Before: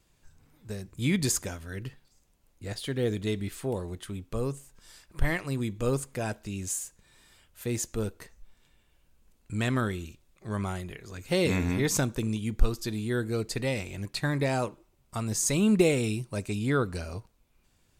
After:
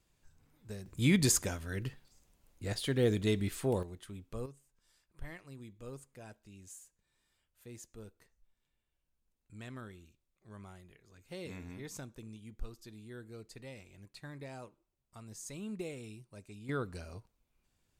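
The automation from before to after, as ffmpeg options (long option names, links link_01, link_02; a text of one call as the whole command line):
ffmpeg -i in.wav -af "asetnsamples=nb_out_samples=441:pad=0,asendcmd='0.86 volume volume -0.5dB;3.83 volume volume -9.5dB;4.46 volume volume -19dB;16.69 volume volume -10dB',volume=-7dB" out.wav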